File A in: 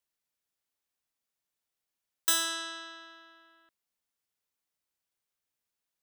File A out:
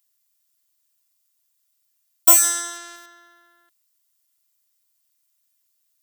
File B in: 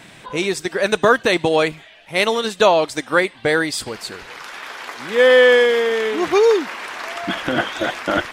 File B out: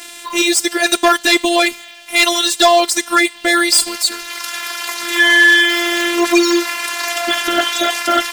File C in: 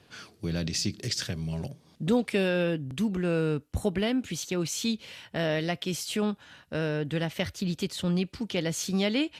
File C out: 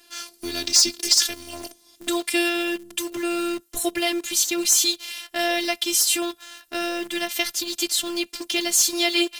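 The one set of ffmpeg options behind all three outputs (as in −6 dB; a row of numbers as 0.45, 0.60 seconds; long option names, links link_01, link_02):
-filter_complex "[0:a]crystalizer=i=5:c=0,afftfilt=real='hypot(re,im)*cos(PI*b)':imag='0':win_size=512:overlap=0.75,asplit=2[link_01][link_02];[link_02]acrusher=bits=5:mix=0:aa=0.000001,volume=-7dB[link_03];[link_01][link_03]amix=inputs=2:normalize=0,volume=5.5dB,asoftclip=hard,volume=-5.5dB,lowshelf=frequency=80:gain=-10,volume=3dB"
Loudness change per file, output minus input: +14.5, +4.0, +8.0 LU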